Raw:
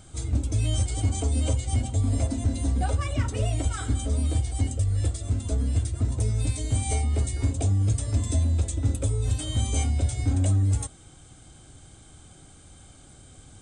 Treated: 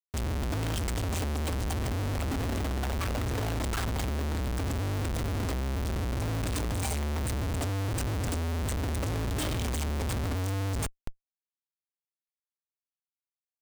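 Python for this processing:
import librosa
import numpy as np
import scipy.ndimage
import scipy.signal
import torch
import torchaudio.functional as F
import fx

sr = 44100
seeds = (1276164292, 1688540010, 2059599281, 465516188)

y = fx.schmitt(x, sr, flips_db=-36.0)
y = y * 10.0 ** (-4.5 / 20.0)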